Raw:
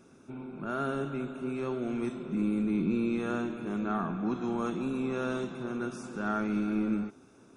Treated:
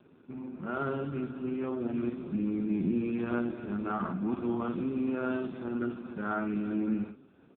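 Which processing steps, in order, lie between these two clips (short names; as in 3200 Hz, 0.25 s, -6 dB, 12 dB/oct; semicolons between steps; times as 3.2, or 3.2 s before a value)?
early reflections 20 ms -17 dB, 50 ms -7 dB; AMR-NB 4.75 kbps 8000 Hz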